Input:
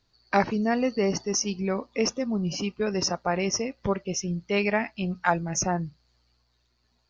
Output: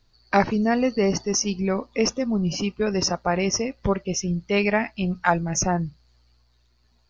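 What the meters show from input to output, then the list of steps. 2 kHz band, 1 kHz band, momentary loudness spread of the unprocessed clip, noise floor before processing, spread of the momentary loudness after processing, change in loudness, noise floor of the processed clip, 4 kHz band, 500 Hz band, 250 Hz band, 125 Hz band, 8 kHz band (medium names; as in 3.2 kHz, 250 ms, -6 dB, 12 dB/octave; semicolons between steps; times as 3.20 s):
+3.0 dB, +3.0 dB, 5 LU, -71 dBFS, 5 LU, +3.5 dB, -63 dBFS, +3.0 dB, +3.0 dB, +4.0 dB, +4.5 dB, no reading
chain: bass shelf 66 Hz +11 dB; trim +3 dB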